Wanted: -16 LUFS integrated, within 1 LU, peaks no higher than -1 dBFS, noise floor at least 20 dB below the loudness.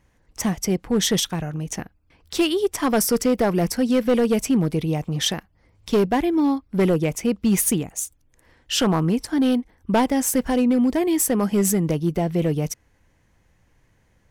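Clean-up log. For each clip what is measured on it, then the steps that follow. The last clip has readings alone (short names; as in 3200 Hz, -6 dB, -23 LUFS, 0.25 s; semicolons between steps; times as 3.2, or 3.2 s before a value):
clipped 1.6%; flat tops at -13.0 dBFS; loudness -21.5 LUFS; peak -13.0 dBFS; loudness target -16.0 LUFS
-> clip repair -13 dBFS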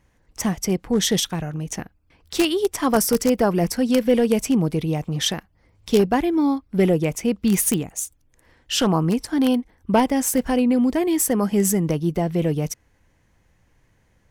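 clipped 0.0%; loudness -21.0 LUFS; peak -4.0 dBFS; loudness target -16.0 LUFS
-> gain +5 dB; limiter -1 dBFS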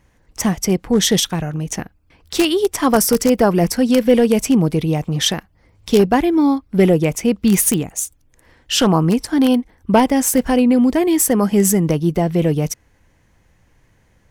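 loudness -16.5 LUFS; peak -1.0 dBFS; noise floor -57 dBFS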